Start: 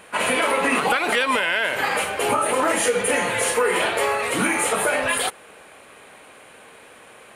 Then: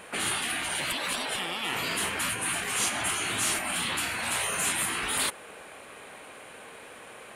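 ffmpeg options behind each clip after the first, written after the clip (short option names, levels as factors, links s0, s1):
-af "afftfilt=real='re*lt(hypot(re,im),0.126)':imag='im*lt(hypot(re,im),0.126)':win_size=1024:overlap=0.75"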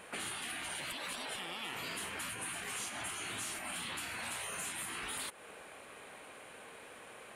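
-af "acompressor=threshold=0.0251:ratio=6,volume=0.501"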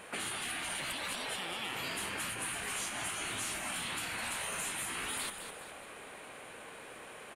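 -filter_complex "[0:a]asplit=6[s0][s1][s2][s3][s4][s5];[s1]adelay=207,afreqshift=-61,volume=0.376[s6];[s2]adelay=414,afreqshift=-122,volume=0.174[s7];[s3]adelay=621,afreqshift=-183,volume=0.0794[s8];[s4]adelay=828,afreqshift=-244,volume=0.0367[s9];[s5]adelay=1035,afreqshift=-305,volume=0.0168[s10];[s0][s6][s7][s8][s9][s10]amix=inputs=6:normalize=0,volume=1.33"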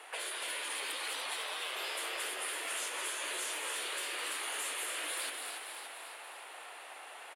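-filter_complex "[0:a]asplit=9[s0][s1][s2][s3][s4][s5][s6][s7][s8];[s1]adelay=286,afreqshift=55,volume=0.501[s9];[s2]adelay=572,afreqshift=110,volume=0.292[s10];[s3]adelay=858,afreqshift=165,volume=0.168[s11];[s4]adelay=1144,afreqshift=220,volume=0.0977[s12];[s5]adelay=1430,afreqshift=275,volume=0.0569[s13];[s6]adelay=1716,afreqshift=330,volume=0.0327[s14];[s7]adelay=2002,afreqshift=385,volume=0.0191[s15];[s8]adelay=2288,afreqshift=440,volume=0.0111[s16];[s0][s9][s10][s11][s12][s13][s14][s15][s16]amix=inputs=9:normalize=0,afreqshift=260,volume=0.841"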